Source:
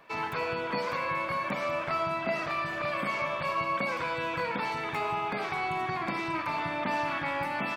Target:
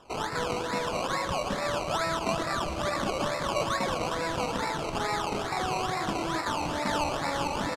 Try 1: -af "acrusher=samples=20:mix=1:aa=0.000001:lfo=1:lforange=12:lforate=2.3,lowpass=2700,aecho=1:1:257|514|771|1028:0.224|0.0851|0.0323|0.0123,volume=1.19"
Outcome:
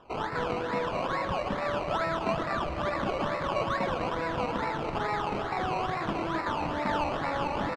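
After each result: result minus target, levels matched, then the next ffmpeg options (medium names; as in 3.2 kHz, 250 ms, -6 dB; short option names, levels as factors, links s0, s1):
8 kHz band -14.0 dB; echo 138 ms early
-af "acrusher=samples=20:mix=1:aa=0.000001:lfo=1:lforange=12:lforate=2.3,lowpass=7400,aecho=1:1:257|514|771|1028:0.224|0.0851|0.0323|0.0123,volume=1.19"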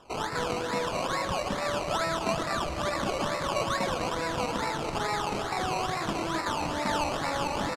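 echo 138 ms early
-af "acrusher=samples=20:mix=1:aa=0.000001:lfo=1:lforange=12:lforate=2.3,lowpass=7400,aecho=1:1:395|790|1185|1580:0.224|0.0851|0.0323|0.0123,volume=1.19"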